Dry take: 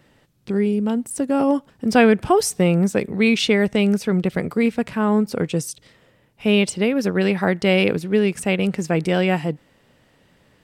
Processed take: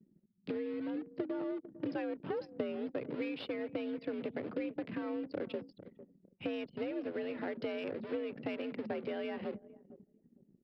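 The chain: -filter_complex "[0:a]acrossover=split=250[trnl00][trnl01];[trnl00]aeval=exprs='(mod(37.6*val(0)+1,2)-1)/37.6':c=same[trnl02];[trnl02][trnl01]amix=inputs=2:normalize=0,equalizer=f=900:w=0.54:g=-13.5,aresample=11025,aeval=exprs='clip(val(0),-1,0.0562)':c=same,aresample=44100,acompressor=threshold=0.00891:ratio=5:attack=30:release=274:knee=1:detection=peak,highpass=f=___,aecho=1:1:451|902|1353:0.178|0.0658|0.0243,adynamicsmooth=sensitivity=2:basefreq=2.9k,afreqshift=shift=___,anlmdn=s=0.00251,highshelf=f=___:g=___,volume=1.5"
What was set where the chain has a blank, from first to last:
44, 61, 3.4k, -9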